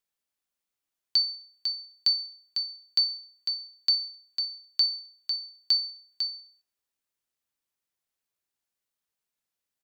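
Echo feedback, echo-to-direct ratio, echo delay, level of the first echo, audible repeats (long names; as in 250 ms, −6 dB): 54%, −22.0 dB, 65 ms, −23.5 dB, 3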